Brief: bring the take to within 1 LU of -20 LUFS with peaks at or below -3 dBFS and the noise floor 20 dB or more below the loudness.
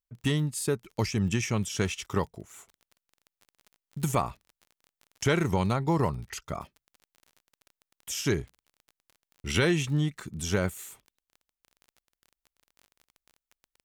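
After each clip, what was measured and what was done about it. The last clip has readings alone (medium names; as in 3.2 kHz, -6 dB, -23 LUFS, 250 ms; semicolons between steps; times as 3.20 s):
tick rate 26 per s; loudness -29.5 LUFS; peak level -14.5 dBFS; loudness target -20.0 LUFS
-> de-click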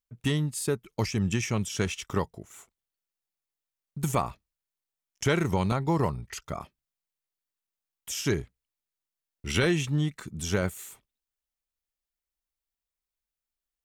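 tick rate 0 per s; loudness -29.5 LUFS; peak level -14.0 dBFS; loudness target -20.0 LUFS
-> trim +9.5 dB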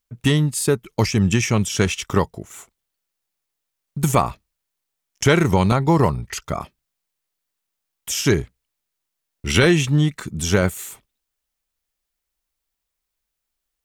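loudness -20.0 LUFS; peak level -4.5 dBFS; noise floor -81 dBFS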